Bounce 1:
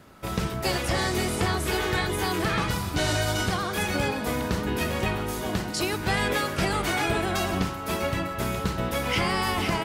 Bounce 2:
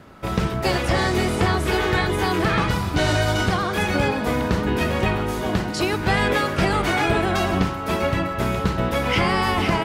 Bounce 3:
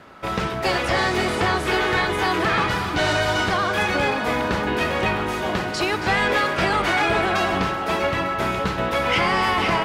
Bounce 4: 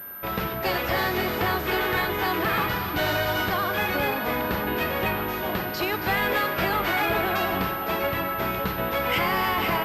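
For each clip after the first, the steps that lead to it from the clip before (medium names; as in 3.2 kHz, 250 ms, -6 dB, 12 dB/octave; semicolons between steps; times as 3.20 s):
treble shelf 5.3 kHz -11 dB; trim +6 dB
on a send: two-band feedback delay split 890 Hz, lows 543 ms, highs 274 ms, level -12 dB; on the sum: overdrive pedal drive 11 dB, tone 4 kHz, clips at -7.5 dBFS; trim -2 dB
whistle 1.6 kHz -43 dBFS; class-D stage that switches slowly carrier 13 kHz; trim -4 dB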